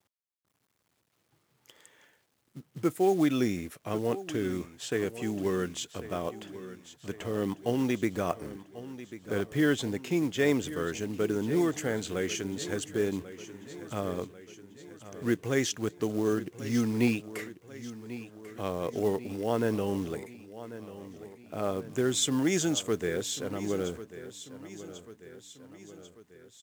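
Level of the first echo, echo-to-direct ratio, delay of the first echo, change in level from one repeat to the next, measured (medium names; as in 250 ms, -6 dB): -14.5 dB, -13.0 dB, 1092 ms, -5.0 dB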